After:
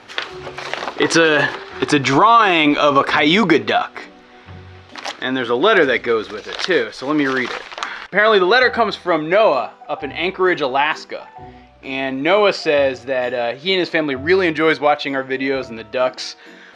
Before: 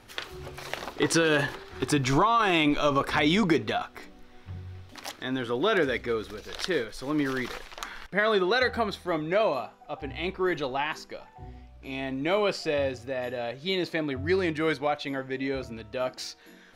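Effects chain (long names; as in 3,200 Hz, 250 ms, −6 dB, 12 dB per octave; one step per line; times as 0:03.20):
high-pass filter 430 Hz 6 dB per octave
high-frequency loss of the air 110 metres
boost into a limiter +15.5 dB
level −1 dB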